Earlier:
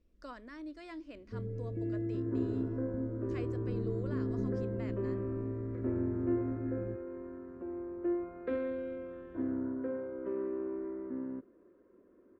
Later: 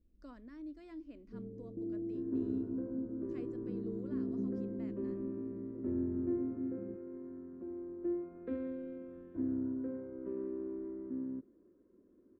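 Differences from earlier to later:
first sound: add Chebyshev band-pass 130–1100 Hz, order 5; master: add EQ curve 280 Hz 0 dB, 540 Hz -9 dB, 1400 Hz -12 dB

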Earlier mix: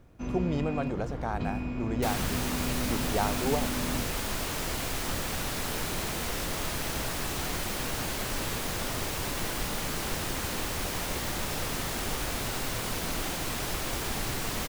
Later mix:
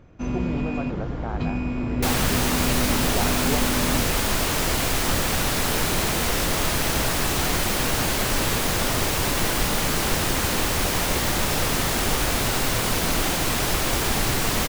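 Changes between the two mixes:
speech: add air absorption 250 m; first sound +7.0 dB; second sound +9.5 dB

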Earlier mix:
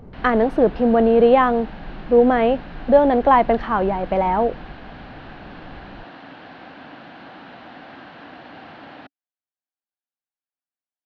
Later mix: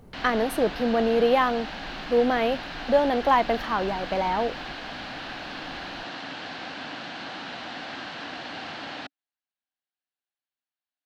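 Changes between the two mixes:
speech -9.0 dB; master: remove tape spacing loss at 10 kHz 33 dB

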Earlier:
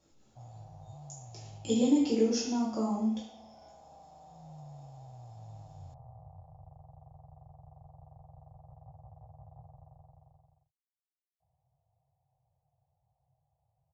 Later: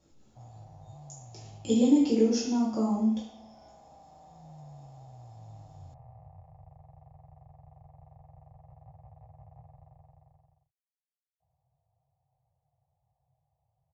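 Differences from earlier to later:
speech: add low shelf 390 Hz +5.5 dB; background: remove LPF 1300 Hz 24 dB/oct

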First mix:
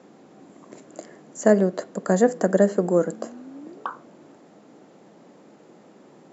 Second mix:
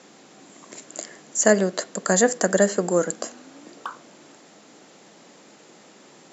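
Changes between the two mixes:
speech +6.0 dB; master: add tilt shelf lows -9 dB, about 1500 Hz

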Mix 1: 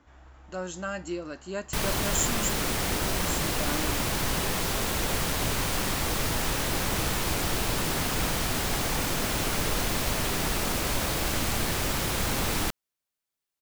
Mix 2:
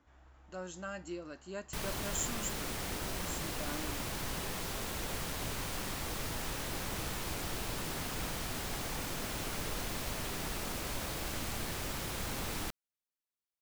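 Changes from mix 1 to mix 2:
speech -8.5 dB; background -10.5 dB

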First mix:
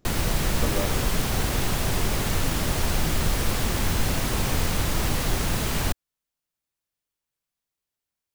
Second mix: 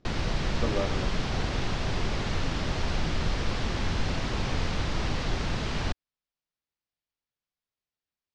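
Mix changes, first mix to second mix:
background -4.0 dB; master: add LPF 5400 Hz 24 dB/oct

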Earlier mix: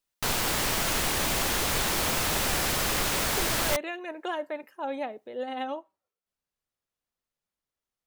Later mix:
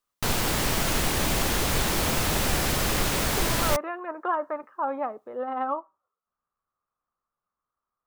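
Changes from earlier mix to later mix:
speech: add synth low-pass 1200 Hz, resonance Q 8; background: add low shelf 410 Hz +7 dB

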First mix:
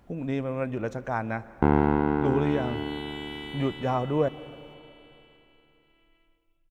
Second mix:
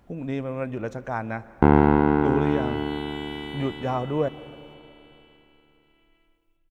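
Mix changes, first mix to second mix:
first sound +5.0 dB; second sound: send +7.0 dB

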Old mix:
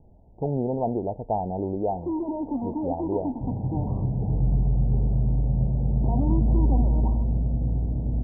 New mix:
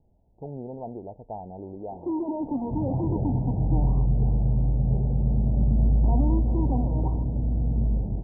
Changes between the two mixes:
speech -10.5 dB; second sound: entry -0.70 s

